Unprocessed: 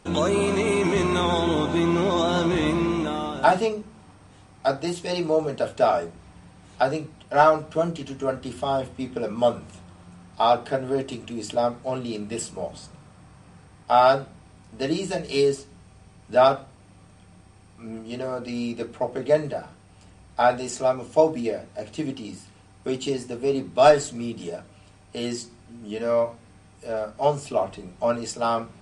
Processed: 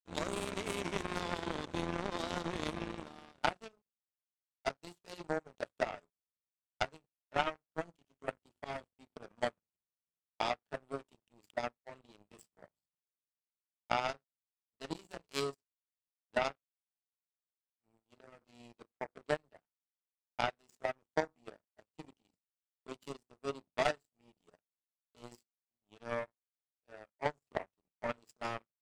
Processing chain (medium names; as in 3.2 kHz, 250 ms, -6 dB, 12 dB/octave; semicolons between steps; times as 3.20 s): power-law waveshaper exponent 3; compression 6:1, threshold -43 dBFS, peak gain reduction 25 dB; trim +12.5 dB